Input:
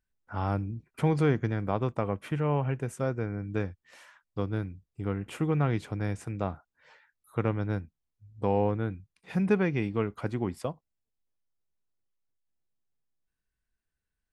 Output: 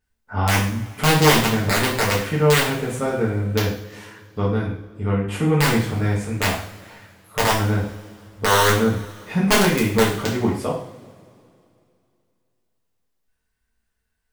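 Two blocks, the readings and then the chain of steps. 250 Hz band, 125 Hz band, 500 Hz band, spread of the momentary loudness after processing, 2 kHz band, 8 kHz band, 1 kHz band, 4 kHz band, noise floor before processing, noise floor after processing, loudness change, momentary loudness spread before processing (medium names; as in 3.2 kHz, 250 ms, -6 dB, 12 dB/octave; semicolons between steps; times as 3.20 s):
+8.5 dB, +8.0 dB, +9.5 dB, 14 LU, +17.5 dB, +26.5 dB, +13.0 dB, +26.0 dB, -85 dBFS, -73 dBFS, +10.5 dB, 11 LU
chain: integer overflow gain 16.5 dB; two-slope reverb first 0.52 s, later 2.6 s, from -21 dB, DRR -6.5 dB; trim +4 dB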